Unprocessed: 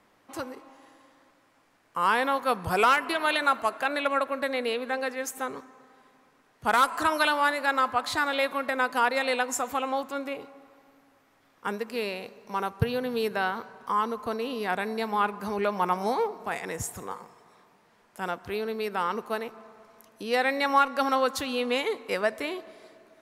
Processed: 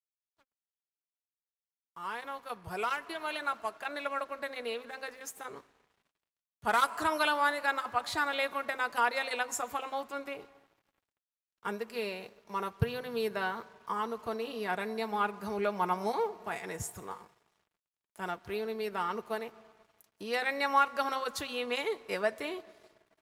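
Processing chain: opening faded in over 6.36 s; crossover distortion -54.5 dBFS; notch comb 260 Hz; gain -3.5 dB

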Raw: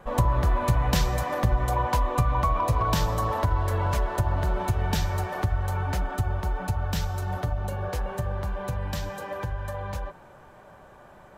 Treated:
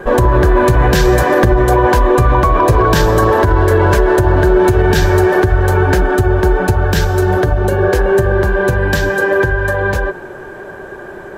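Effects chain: small resonant body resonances 380/1600 Hz, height 17 dB, ringing for 40 ms; maximiser +15 dB; gain -1 dB

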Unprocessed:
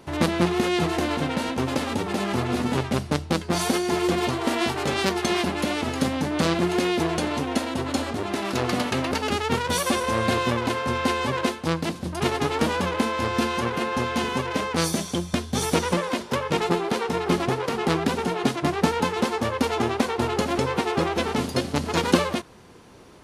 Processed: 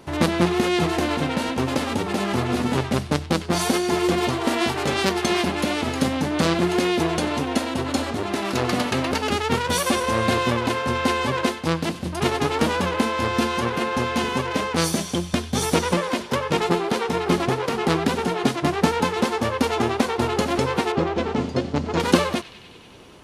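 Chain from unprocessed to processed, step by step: 20.92–22 EQ curve 460 Hz 0 dB, 7100 Hz -10 dB, 12000 Hz -26 dB; on a send: narrowing echo 96 ms, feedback 83%, band-pass 3000 Hz, level -16.5 dB; on the sum: gain +2 dB

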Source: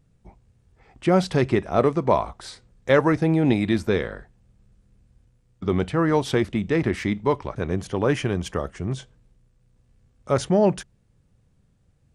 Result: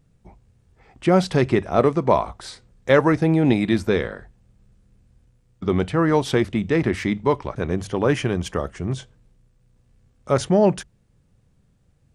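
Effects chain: notches 50/100 Hz; gain +2 dB

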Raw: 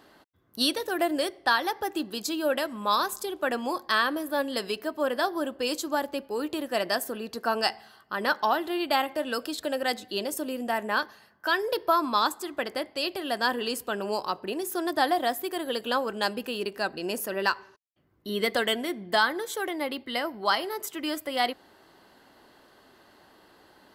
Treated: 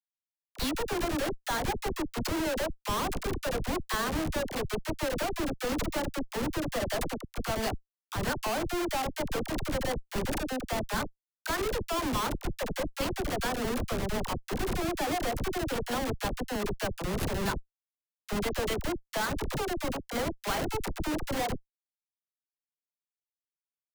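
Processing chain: Schmitt trigger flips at -27.5 dBFS; dispersion lows, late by 43 ms, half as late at 630 Hz

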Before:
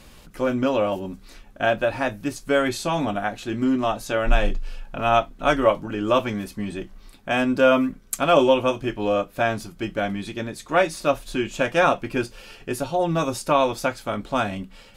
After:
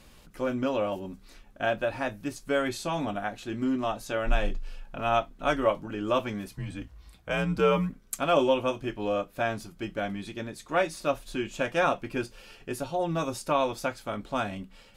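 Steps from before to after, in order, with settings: 6.49–7.9 frequency shift -80 Hz; gain -6.5 dB

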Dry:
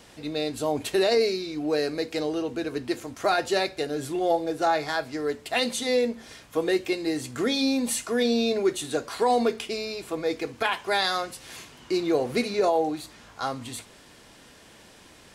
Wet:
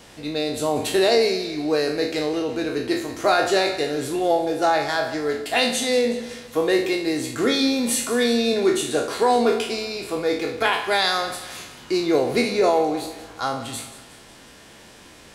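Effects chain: spectral trails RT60 0.52 s; split-band echo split 1400 Hz, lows 0.139 s, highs 0.183 s, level -14.5 dB; gain +3 dB

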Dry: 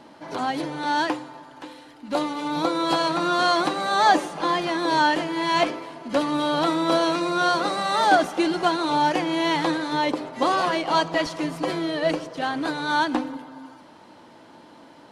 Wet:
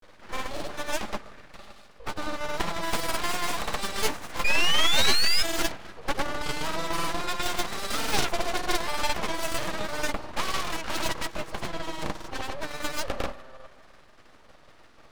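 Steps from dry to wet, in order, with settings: self-modulated delay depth 0.63 ms; tremolo saw down 7.2 Hz, depth 50%; in parallel at -11 dB: Schmitt trigger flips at -21 dBFS; on the sum: grains, pitch spread up and down by 0 st; painted sound rise, 4.44–5.43, 1200–2600 Hz -18 dBFS; full-wave rectifier

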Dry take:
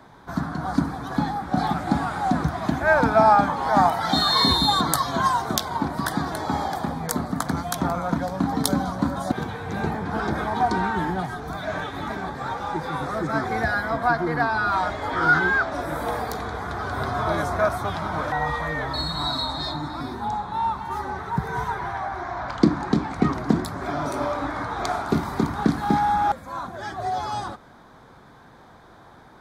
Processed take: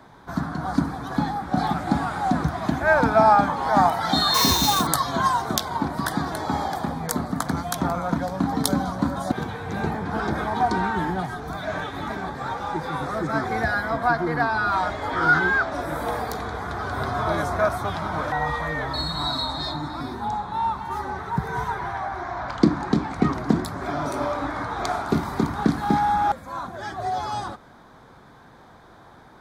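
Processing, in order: 4.34–4.87 sample-rate reducer 10000 Hz, jitter 20%

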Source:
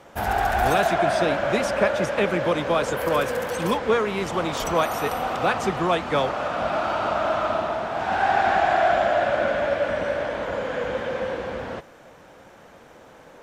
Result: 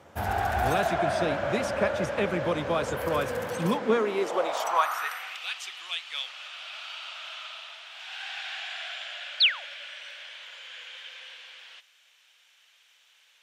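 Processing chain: painted sound fall, 9.4–9.65, 470–4800 Hz -19 dBFS; high-pass sweep 81 Hz -> 3000 Hz, 3.31–5.46; gain -5.5 dB

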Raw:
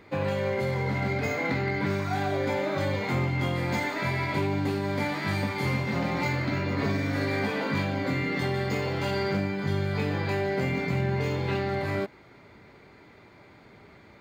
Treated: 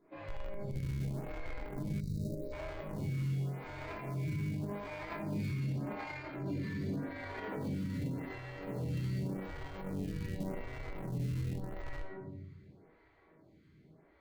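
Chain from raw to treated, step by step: Doppler pass-by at 6.48, 10 m/s, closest 2.9 m; shoebox room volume 700 m³, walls mixed, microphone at 3 m; in parallel at -9 dB: Schmitt trigger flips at -38 dBFS; on the sum: compressor 3:1, threshold -43 dBFS, peak gain reduction 20.5 dB; low shelf 490 Hz +6.5 dB; resonator 160 Hz, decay 0.35 s, harmonics all, mix 70%; limiter -43.5 dBFS, peak gain reduction 12 dB; spectral gain 2–2.53, 640–3700 Hz -26 dB; photocell phaser 0.86 Hz; gain +15 dB

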